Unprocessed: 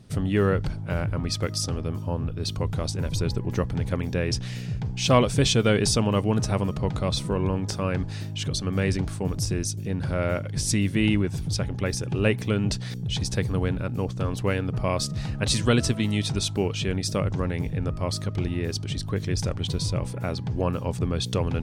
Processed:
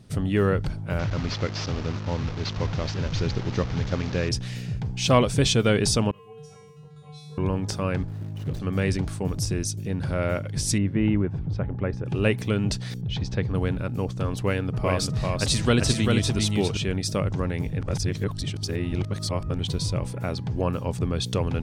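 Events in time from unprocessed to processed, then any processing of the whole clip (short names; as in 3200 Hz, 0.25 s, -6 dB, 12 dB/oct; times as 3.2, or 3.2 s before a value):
0.99–4.29 delta modulation 32 kbps, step -30.5 dBFS
6.11–7.38 resonator 150 Hz, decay 0.92 s, harmonics odd, mix 100%
8.01–8.6 median filter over 41 samples
10.78–12.06 LPF 1500 Hz
13.01–13.55 air absorption 180 m
14.43–16.77 echo 0.394 s -3.5 dB
17.81–19.59 reverse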